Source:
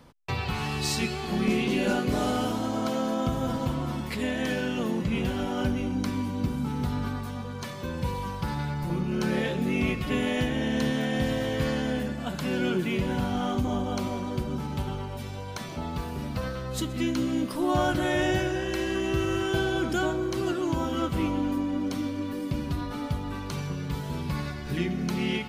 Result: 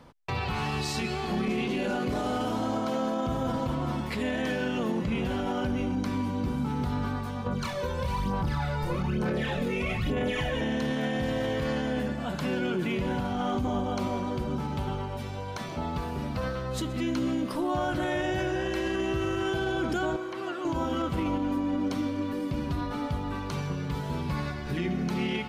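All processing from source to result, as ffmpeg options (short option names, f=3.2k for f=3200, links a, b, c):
-filter_complex "[0:a]asettb=1/sr,asplit=3[a][b][c];[a]atrim=end=7.464[d];[b]atrim=start=7.46:end=10.61,asetpts=PTS-STARTPTS,afade=t=in:d=0.004:c=qsin,afade=t=out:st=3.146:d=0.004:c=qsin,aphaser=in_gain=1:out_gain=1:delay=2.2:decay=0.7:speed=1.1:type=sinusoidal,asplit=2[e][f];[f]adelay=26,volume=-5dB[g];[e][g]amix=inputs=2:normalize=0,atrim=end_sample=138915[h];[c]atrim=start=10.606[i];[d][h]acrossfade=d=0.004:c1=hsin:c2=qsin[j];[j][i]acrossfade=d=0.004:c1=qsin:c2=hsin,asettb=1/sr,asplit=3[k][l][m];[k]atrim=end=20.164[n];[l]atrim=start=20.16:end=20.65,asetpts=PTS-STARTPTS,afade=t=in:d=0.004:c=qsin,afade=t=out:st=0.486:d=0.004:c=qsin,acrossover=split=3100[o][p];[p]acompressor=threshold=-53dB:ratio=4:attack=1:release=60[q];[o][q]amix=inputs=2:normalize=0,highpass=f=870:p=1[r];[m]atrim=start=20.646[s];[n][r]acrossfade=d=0.004:c1=hsin:c2=qsin[t];[t][s]acrossfade=d=0.004:c1=qsin:c2=hsin,equalizer=f=820:t=o:w=2:g=3,alimiter=limit=-21dB:level=0:latency=1:release=31,highshelf=f=7.7k:g=-7"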